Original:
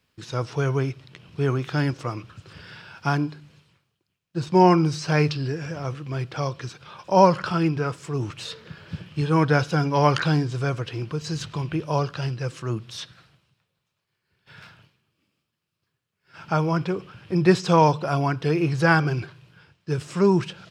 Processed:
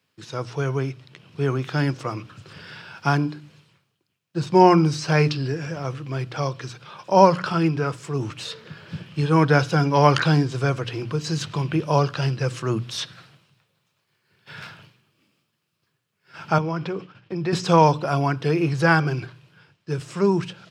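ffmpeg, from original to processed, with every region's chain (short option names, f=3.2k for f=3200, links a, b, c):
-filter_complex "[0:a]asettb=1/sr,asplit=3[a][b][c];[a]atrim=end=16.584[d];[b]atrim=start=16.58:end=17.53,asetpts=PTS-STARTPTS,afade=t=in:d=0.004:c=qsin,afade=t=out:st=0.946:d=0.004:c=qsin,agate=range=-33dB:threshold=-40dB:ratio=3:release=100:detection=peak,acompressor=threshold=-29dB:ratio=2:attack=3.2:release=140:knee=1:detection=peak,highpass=110,lowpass=5.9k[e];[c]atrim=start=17.526[f];[d][e]acrossfade=d=0.004:c1=hsin:c2=qsin[g];[g][f]acrossfade=d=0.004:c1=qsin:c2=hsin,highpass=f=100:w=0.5412,highpass=f=100:w=1.3066,bandreject=f=60:t=h:w=6,bandreject=f=120:t=h:w=6,bandreject=f=180:t=h:w=6,bandreject=f=240:t=h:w=6,bandreject=f=300:t=h:w=6,dynaudnorm=f=390:g=11:m=11.5dB,volume=-1dB"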